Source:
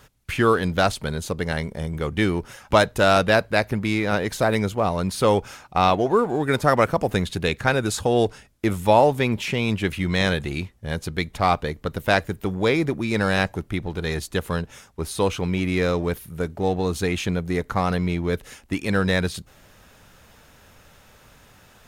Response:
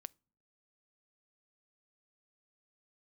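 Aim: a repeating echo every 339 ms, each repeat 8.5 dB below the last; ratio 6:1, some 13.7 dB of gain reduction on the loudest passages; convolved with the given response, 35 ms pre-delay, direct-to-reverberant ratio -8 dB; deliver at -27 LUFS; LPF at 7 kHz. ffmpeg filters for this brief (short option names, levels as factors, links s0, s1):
-filter_complex "[0:a]lowpass=7000,acompressor=threshold=0.0447:ratio=6,aecho=1:1:339|678|1017|1356:0.376|0.143|0.0543|0.0206,asplit=2[s0][s1];[1:a]atrim=start_sample=2205,adelay=35[s2];[s1][s2]afir=irnorm=-1:irlink=0,volume=4.73[s3];[s0][s3]amix=inputs=2:normalize=0,volume=0.631"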